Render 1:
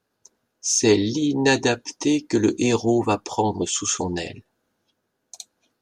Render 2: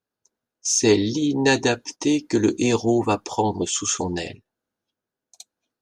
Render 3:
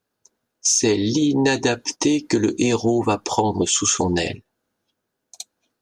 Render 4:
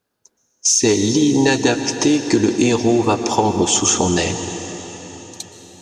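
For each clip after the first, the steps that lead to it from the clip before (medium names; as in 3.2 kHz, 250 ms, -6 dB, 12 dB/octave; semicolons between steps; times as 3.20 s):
gate -36 dBFS, range -12 dB
compression 6:1, threshold -24 dBFS, peak gain reduction 12 dB; trim +8.5 dB
plate-style reverb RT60 4.4 s, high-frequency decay 0.95×, pre-delay 110 ms, DRR 8 dB; trim +3 dB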